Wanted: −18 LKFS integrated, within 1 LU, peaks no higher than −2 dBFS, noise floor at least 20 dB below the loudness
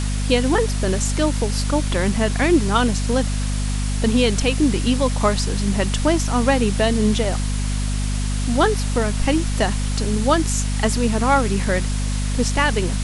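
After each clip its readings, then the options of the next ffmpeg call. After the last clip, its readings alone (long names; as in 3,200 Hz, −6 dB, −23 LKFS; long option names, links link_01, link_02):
mains hum 50 Hz; hum harmonics up to 250 Hz; level of the hum −19 dBFS; background noise floor −22 dBFS; target noise floor −40 dBFS; integrated loudness −20.0 LKFS; sample peak −3.5 dBFS; target loudness −18.0 LKFS
→ -af "bandreject=frequency=50:width_type=h:width=4,bandreject=frequency=100:width_type=h:width=4,bandreject=frequency=150:width_type=h:width=4,bandreject=frequency=200:width_type=h:width=4,bandreject=frequency=250:width_type=h:width=4"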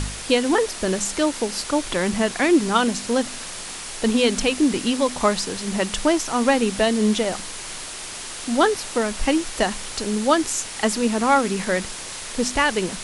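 mains hum none found; background noise floor −34 dBFS; target noise floor −42 dBFS
→ -af "afftdn=noise_reduction=8:noise_floor=-34"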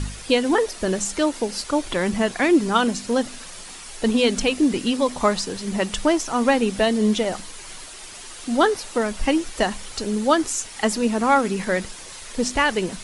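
background noise floor −39 dBFS; target noise floor −42 dBFS
→ -af "afftdn=noise_reduction=6:noise_floor=-39"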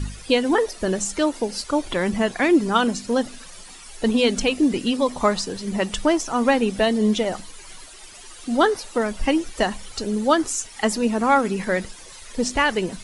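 background noise floor −42 dBFS; integrated loudness −22.0 LKFS; sample peak −5.0 dBFS; target loudness −18.0 LKFS
→ -af "volume=4dB,alimiter=limit=-2dB:level=0:latency=1"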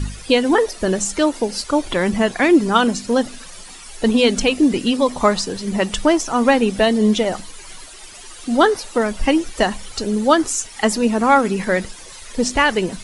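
integrated loudness −18.0 LKFS; sample peak −2.0 dBFS; background noise floor −38 dBFS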